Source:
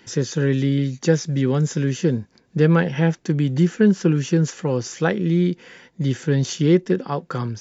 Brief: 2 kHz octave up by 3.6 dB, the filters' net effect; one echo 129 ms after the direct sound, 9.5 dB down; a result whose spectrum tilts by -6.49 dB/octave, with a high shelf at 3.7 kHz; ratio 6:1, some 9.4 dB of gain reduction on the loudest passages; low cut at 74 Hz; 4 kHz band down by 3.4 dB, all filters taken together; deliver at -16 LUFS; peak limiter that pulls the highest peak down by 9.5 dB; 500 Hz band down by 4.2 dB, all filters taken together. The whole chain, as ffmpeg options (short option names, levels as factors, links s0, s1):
-af "highpass=74,equalizer=f=500:t=o:g=-5.5,equalizer=f=2000:t=o:g=7,highshelf=f=3700:g=-5.5,equalizer=f=4000:t=o:g=-3.5,acompressor=threshold=0.0708:ratio=6,alimiter=limit=0.0794:level=0:latency=1,aecho=1:1:129:0.335,volume=5.62"